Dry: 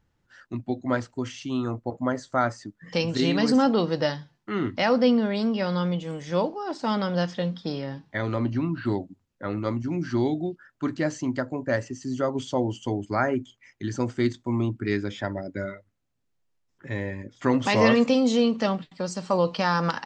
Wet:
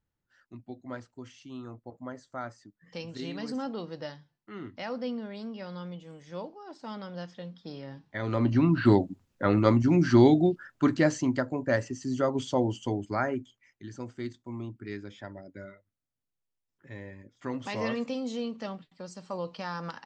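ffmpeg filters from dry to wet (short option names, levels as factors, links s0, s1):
-af "volume=2,afade=t=in:st=7.55:d=0.64:silence=0.398107,afade=t=in:st=8.19:d=0.63:silence=0.251189,afade=t=out:st=10.5:d=0.93:silence=0.446684,afade=t=out:st=12.65:d=1.18:silence=0.266073"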